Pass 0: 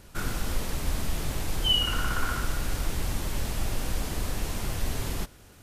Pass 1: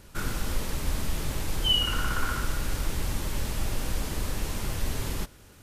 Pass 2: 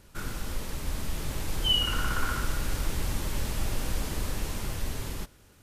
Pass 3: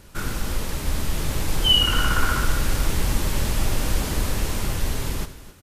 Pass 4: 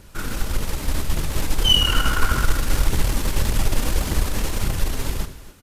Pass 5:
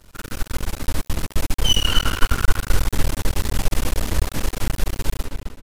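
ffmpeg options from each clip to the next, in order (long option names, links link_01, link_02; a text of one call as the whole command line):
ffmpeg -i in.wav -af "bandreject=frequency=710:width=12" out.wav
ffmpeg -i in.wav -af "dynaudnorm=framelen=290:gausssize=9:maxgain=4dB,volume=-4.5dB" out.wav
ffmpeg -i in.wav -af "aecho=1:1:73|264:0.2|0.168,volume=7.5dB" out.wav
ffmpeg -i in.wav -af "aphaser=in_gain=1:out_gain=1:delay=4.5:decay=0.28:speed=1.7:type=triangular,aeval=exprs='0.668*(cos(1*acos(clip(val(0)/0.668,-1,1)))-cos(1*PI/2))+0.0422*(cos(6*acos(clip(val(0)/0.668,-1,1)))-cos(6*PI/2))':channel_layout=same" out.wav
ffmpeg -i in.wav -filter_complex "[0:a]asplit=2[link_01][link_02];[link_02]adelay=260,lowpass=frequency=2800:poles=1,volume=-4.5dB,asplit=2[link_03][link_04];[link_04]adelay=260,lowpass=frequency=2800:poles=1,volume=0.26,asplit=2[link_05][link_06];[link_06]adelay=260,lowpass=frequency=2800:poles=1,volume=0.26,asplit=2[link_07][link_08];[link_08]adelay=260,lowpass=frequency=2800:poles=1,volume=0.26[link_09];[link_01][link_03][link_05][link_07][link_09]amix=inputs=5:normalize=0,aeval=exprs='max(val(0),0)':channel_layout=same" out.wav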